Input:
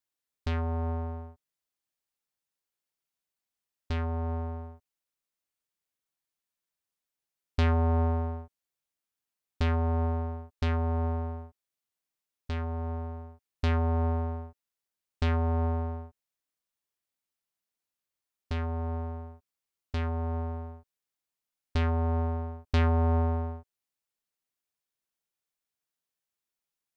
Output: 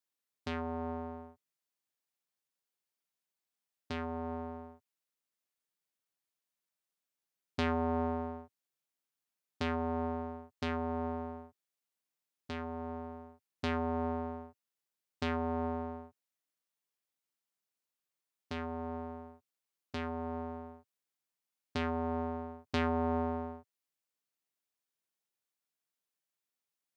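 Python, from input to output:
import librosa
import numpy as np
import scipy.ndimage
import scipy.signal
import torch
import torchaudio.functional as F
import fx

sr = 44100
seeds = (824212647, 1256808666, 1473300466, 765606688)

y = scipy.signal.sosfilt(scipy.signal.butter(4, 120.0, 'highpass', fs=sr, output='sos'), x)
y = y * librosa.db_to_amplitude(-2.0)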